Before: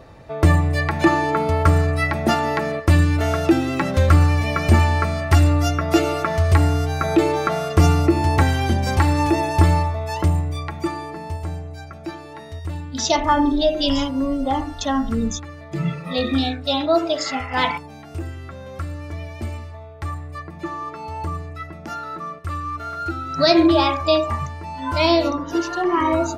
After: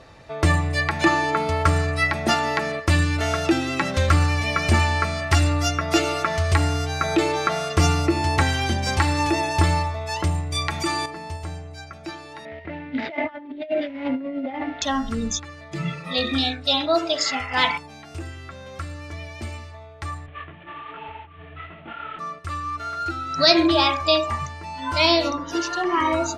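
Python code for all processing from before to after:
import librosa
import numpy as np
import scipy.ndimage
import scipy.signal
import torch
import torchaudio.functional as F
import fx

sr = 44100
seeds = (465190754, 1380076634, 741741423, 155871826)

y = fx.chain(x, sr, fx.high_shelf(hz=3400.0, db=8.5),
    fx.env_flatten(amount_pct=50), at=(10.52, 11.06))
y = fx.chain(y, sr, fx.median_filter(points=15),
    fx.over_compress(threshold_db=-25.0, ratio=-0.5),
    fx.cabinet(low_hz=190.0, low_slope=12, high_hz=2900.0, hz=(250.0, 610.0, 1100.0, 2100.0), db=(6, 6, -9, 10)), at=(12.45, 14.82))
y = fx.chain(y, sr, fx.cvsd(bps=16000),
    fx.over_compress(threshold_db=-31.0, ratio=-0.5),
    fx.detune_double(cents=44), at=(20.26, 22.19))
y = scipy.signal.sosfilt(scipy.signal.butter(2, 8500.0, 'lowpass', fs=sr, output='sos'), y)
y = fx.tilt_shelf(y, sr, db=-5.0, hz=1300.0)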